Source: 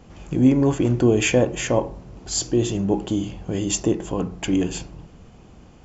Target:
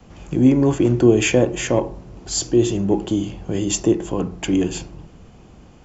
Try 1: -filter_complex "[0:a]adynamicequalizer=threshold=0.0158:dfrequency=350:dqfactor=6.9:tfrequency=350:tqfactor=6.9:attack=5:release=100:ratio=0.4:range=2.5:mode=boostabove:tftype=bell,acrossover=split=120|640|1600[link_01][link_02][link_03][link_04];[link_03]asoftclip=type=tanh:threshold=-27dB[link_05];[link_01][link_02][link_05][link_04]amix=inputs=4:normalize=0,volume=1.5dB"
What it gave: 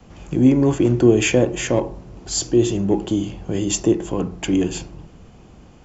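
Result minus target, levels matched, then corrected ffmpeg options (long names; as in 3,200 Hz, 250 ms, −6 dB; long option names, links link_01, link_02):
soft clipping: distortion +7 dB
-filter_complex "[0:a]adynamicequalizer=threshold=0.0158:dfrequency=350:dqfactor=6.9:tfrequency=350:tqfactor=6.9:attack=5:release=100:ratio=0.4:range=2.5:mode=boostabove:tftype=bell,acrossover=split=120|640|1600[link_01][link_02][link_03][link_04];[link_03]asoftclip=type=tanh:threshold=-21dB[link_05];[link_01][link_02][link_05][link_04]amix=inputs=4:normalize=0,volume=1.5dB"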